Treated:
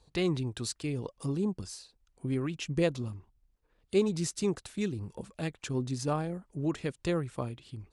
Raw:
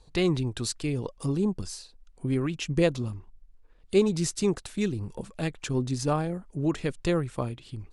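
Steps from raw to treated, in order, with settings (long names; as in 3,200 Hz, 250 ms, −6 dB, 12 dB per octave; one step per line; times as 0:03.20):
high-pass filter 45 Hz 12 dB per octave
level −4.5 dB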